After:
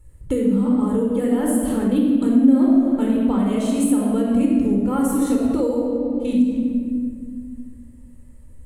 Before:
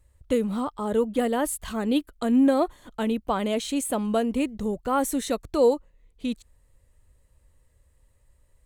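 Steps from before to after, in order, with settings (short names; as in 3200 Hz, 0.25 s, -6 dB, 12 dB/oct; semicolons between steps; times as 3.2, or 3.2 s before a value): low shelf 230 Hz +7 dB; shoebox room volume 2400 m³, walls mixed, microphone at 4.3 m; compressor 3:1, threshold -25 dBFS, peak gain reduction 15 dB; fifteen-band EQ 250 Hz +11 dB, 4000 Hz -4 dB, 10000 Hz +8 dB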